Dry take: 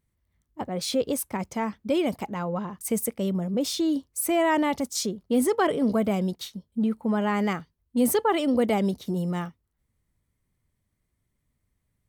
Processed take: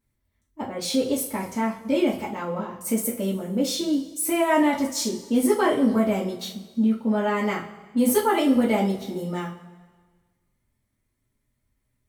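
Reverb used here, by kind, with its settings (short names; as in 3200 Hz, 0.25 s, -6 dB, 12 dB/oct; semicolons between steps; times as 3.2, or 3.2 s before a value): two-slope reverb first 0.31 s, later 1.5 s, from -17 dB, DRR -6 dB; gain -4.5 dB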